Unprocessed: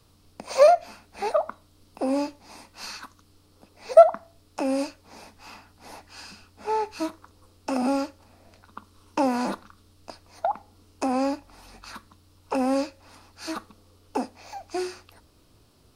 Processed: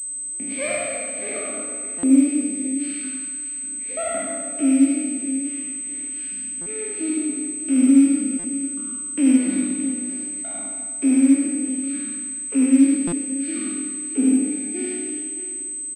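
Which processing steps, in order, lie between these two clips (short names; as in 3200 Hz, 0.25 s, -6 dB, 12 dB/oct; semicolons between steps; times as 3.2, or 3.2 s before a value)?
spectral trails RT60 1.96 s; in parallel at -9 dB: one-sided clip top -15.5 dBFS; on the sum: vowel filter i; on a send: tapped delay 76/99/624 ms -4/-5.5/-11.5 dB; on the sum: stuck buffer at 0.34/1.98/6.61/8.39/13.07, samples 256, times 8; pulse-width modulation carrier 8200 Hz; gain +8 dB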